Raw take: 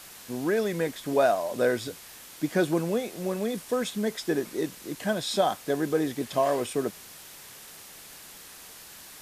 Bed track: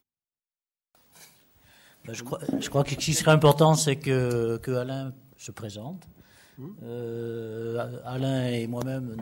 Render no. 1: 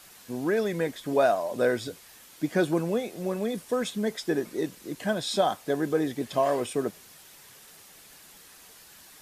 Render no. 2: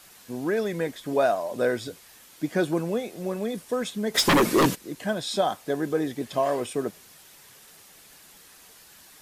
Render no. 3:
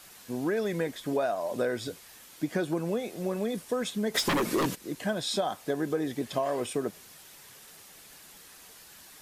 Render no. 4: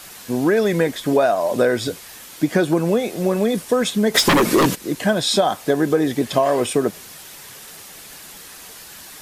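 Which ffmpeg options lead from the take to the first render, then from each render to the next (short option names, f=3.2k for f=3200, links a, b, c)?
-af "afftdn=nr=6:nf=-47"
-filter_complex "[0:a]asplit=3[a][b][c];[a]afade=t=out:st=4.14:d=0.02[d];[b]aeval=exprs='0.188*sin(PI/2*5.01*val(0)/0.188)':c=same,afade=t=in:st=4.14:d=0.02,afade=t=out:st=4.74:d=0.02[e];[c]afade=t=in:st=4.74:d=0.02[f];[d][e][f]amix=inputs=3:normalize=0"
-af "acompressor=threshold=-25dB:ratio=6"
-af "volume=12dB"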